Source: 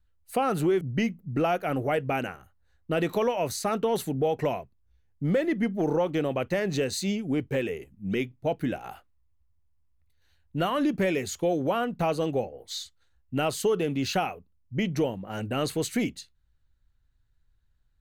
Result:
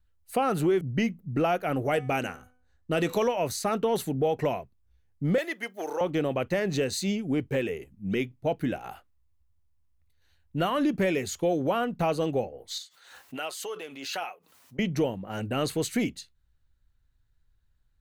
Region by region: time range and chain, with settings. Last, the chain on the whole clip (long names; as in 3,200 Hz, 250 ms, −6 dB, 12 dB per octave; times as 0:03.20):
0:01.85–0:03.28: parametric band 6,800 Hz +8 dB 1.4 octaves + hum removal 249.9 Hz, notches 40 + one half of a high-frequency compander decoder only
0:05.38–0:06.01: high-pass filter 500 Hz + spectral tilt +2.5 dB per octave
0:12.78–0:14.79: high-pass filter 630 Hz + flanger 1.3 Hz, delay 5.3 ms, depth 2.6 ms, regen +55% + background raised ahead of every attack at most 62 dB per second
whole clip: no processing